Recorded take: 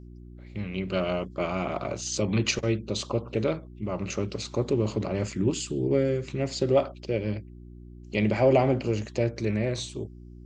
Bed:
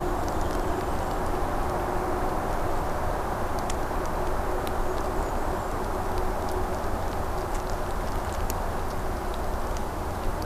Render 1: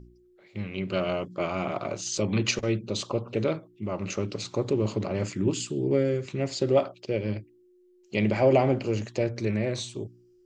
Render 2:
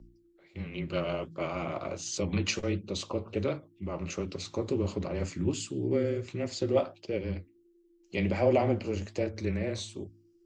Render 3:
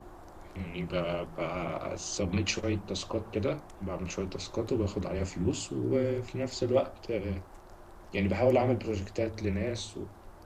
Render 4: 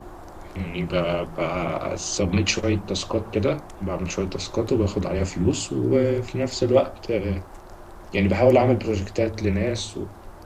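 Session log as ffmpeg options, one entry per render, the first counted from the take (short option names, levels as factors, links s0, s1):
-af "bandreject=f=60:t=h:w=4,bandreject=f=120:t=h:w=4,bandreject=f=180:t=h:w=4,bandreject=f=240:t=h:w=4,bandreject=f=300:t=h:w=4"
-af "flanger=delay=3.4:depth=10:regen=-61:speed=1.4:shape=triangular,afreqshift=-17"
-filter_complex "[1:a]volume=0.0794[s0];[0:a][s0]amix=inputs=2:normalize=0"
-af "volume=2.66"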